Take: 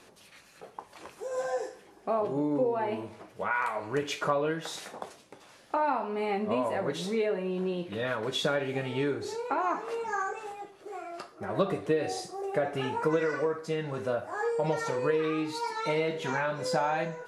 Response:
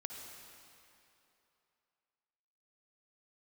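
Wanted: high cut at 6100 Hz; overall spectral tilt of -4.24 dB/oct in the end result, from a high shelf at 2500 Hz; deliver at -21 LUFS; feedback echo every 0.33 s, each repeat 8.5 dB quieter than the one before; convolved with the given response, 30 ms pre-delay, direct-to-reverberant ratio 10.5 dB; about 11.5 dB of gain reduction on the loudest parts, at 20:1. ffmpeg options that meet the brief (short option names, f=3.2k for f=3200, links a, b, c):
-filter_complex "[0:a]lowpass=6.1k,highshelf=f=2.5k:g=7,acompressor=threshold=-33dB:ratio=20,aecho=1:1:330|660|990|1320:0.376|0.143|0.0543|0.0206,asplit=2[a][b];[1:a]atrim=start_sample=2205,adelay=30[c];[b][c]afir=irnorm=-1:irlink=0,volume=-9dB[d];[a][d]amix=inputs=2:normalize=0,volume=16dB"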